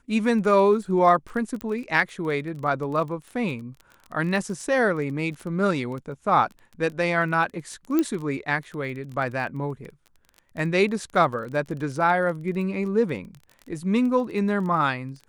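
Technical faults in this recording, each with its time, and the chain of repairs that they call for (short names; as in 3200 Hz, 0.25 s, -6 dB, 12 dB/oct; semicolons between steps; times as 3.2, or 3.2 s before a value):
crackle 20/s -32 dBFS
1.61 pop -18 dBFS
7.99 pop -10 dBFS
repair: de-click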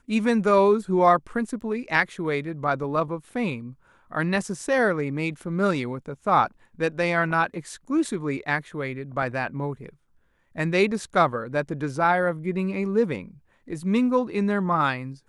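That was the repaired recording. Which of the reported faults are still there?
1.61 pop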